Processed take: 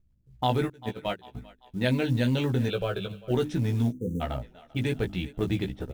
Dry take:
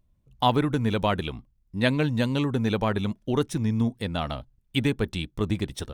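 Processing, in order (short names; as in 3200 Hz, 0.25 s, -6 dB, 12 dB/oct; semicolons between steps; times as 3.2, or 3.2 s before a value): low-pass opened by the level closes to 320 Hz, open at -19 dBFS; notches 50/100/150/200/250/300 Hz; 0.68–1.35 gate -21 dBFS, range -28 dB; bell 1100 Hz -11.5 dB 0.29 oct; thinning echo 0.394 s, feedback 50%, high-pass 380 Hz, level -21 dB; limiter -17 dBFS, peak gain reduction 7 dB; 2.68–3.31 fixed phaser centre 1300 Hz, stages 8; short-mantissa float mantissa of 4-bit; 3.91–4.21 spectral delete 520–5800 Hz; doubler 16 ms -4 dB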